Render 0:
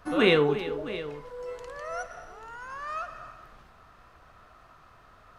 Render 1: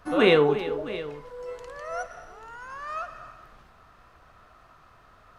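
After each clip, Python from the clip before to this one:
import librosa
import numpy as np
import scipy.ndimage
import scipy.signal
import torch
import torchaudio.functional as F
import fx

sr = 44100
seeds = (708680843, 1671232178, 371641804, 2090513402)

y = fx.dynamic_eq(x, sr, hz=680.0, q=0.84, threshold_db=-36.0, ratio=4.0, max_db=5)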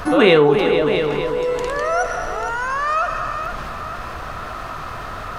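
y = fx.echo_feedback(x, sr, ms=457, feedback_pct=32, wet_db=-14.5)
y = fx.env_flatten(y, sr, amount_pct=50)
y = F.gain(torch.from_numpy(y), 5.5).numpy()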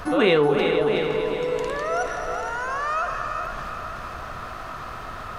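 y = fx.echo_feedback(x, sr, ms=377, feedback_pct=51, wet_db=-8.0)
y = F.gain(torch.from_numpy(y), -6.0).numpy()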